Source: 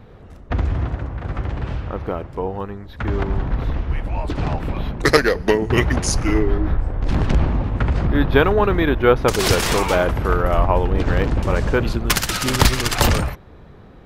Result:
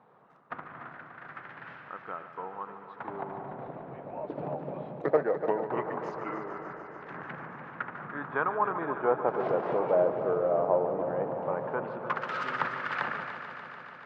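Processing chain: treble ducked by the level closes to 1600 Hz, closed at -13.5 dBFS; resonant low shelf 100 Hz -13.5 dB, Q 3; LFO band-pass sine 0.17 Hz 550–1600 Hz; on a send: multi-head echo 0.146 s, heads first and second, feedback 74%, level -13 dB; on the sum: gain -4 dB

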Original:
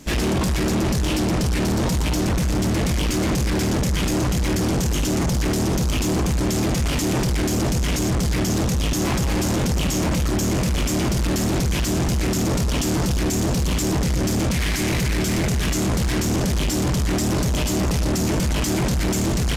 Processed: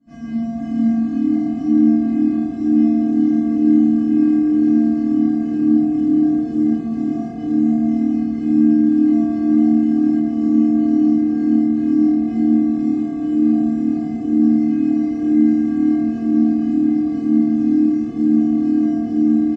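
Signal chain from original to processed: median filter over 15 samples; steep low-pass 8000 Hz 36 dB/oct; bell 180 Hz +12 dB 2 oct; resonator 230 Hz, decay 0.73 s, harmonics odd, mix 100%; frequency-shifting echo 0.455 s, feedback 47%, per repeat +38 Hz, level -3.5 dB; FDN reverb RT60 2 s, low-frequency decay 1.05×, high-frequency decay 0.3×, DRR -9 dB; gain -2.5 dB

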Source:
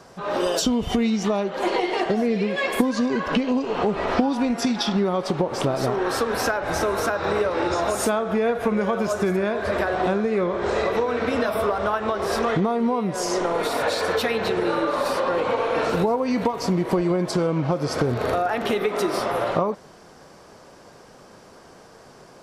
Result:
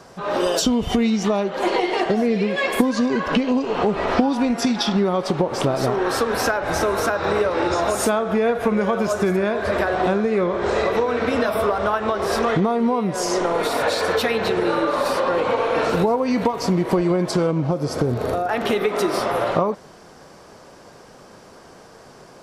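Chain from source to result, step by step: 17.51–18.49 bell 2100 Hz -7.5 dB 2.7 oct; gain +2.5 dB

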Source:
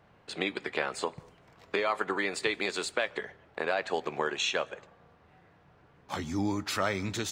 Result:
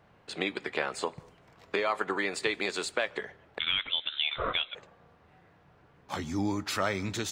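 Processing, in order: 3.59–4.75 inverted band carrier 3900 Hz

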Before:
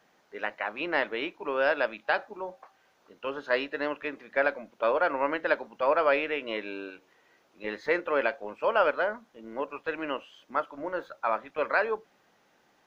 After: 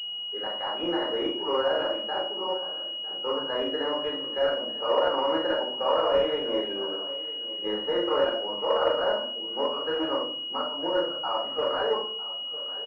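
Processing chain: HPF 1000 Hz 6 dB/oct; tilt -3 dB/oct; limiter -24.5 dBFS, peak gain reduction 10 dB; doubler 40 ms -11 dB; on a send: feedback echo 0.953 s, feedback 26%, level -16 dB; on the sum: shoebox room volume 610 m³, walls furnished, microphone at 4 m; pulse-width modulation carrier 2900 Hz; gain +3 dB

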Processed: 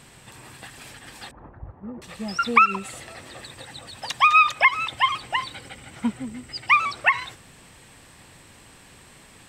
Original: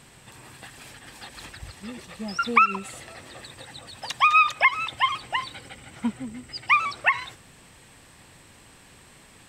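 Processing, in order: 1.31–2.02 LPF 1100 Hz 24 dB/oct; gain +2 dB

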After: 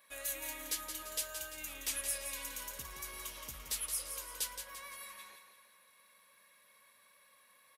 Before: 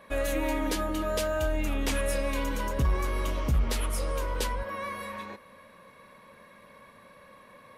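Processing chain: pre-emphasis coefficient 0.97; feedback echo 0.171 s, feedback 47%, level -8 dB

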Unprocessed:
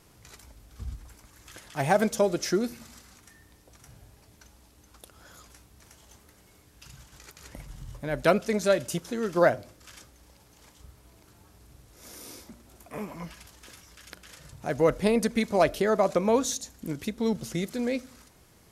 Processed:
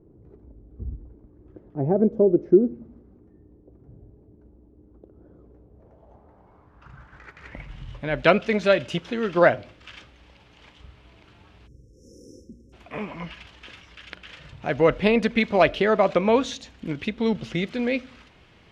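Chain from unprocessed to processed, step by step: spectral delete 11.67–12.73, 550–5200 Hz; low-pass sweep 370 Hz -> 2900 Hz, 5.37–7.86; gain +3.5 dB

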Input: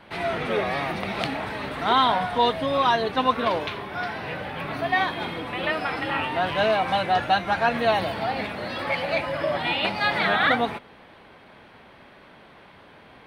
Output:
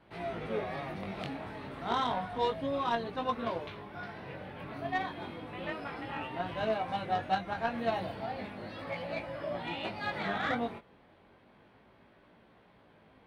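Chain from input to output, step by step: chorus 0.32 Hz, delay 17 ms, depth 5 ms; added harmonics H 3 -17 dB, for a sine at -10 dBFS; tilt shelf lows +4 dB, about 760 Hz; gain -4.5 dB

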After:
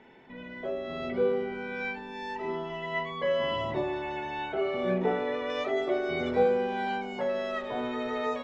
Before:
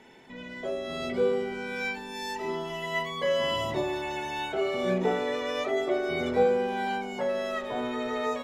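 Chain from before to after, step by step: LPF 2700 Hz 12 dB/oct, from 5.5 s 4600 Hz; gain -1 dB

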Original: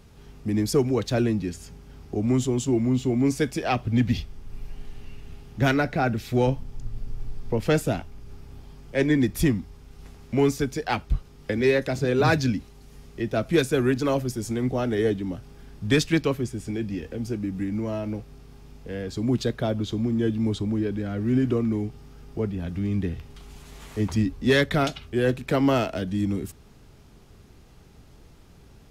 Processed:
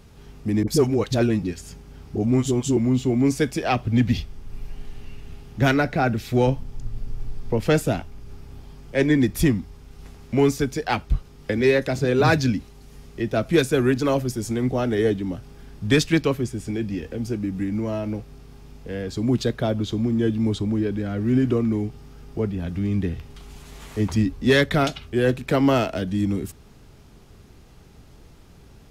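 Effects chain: 0.63–2.77 dispersion highs, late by 46 ms, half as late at 440 Hz; gain +2.5 dB

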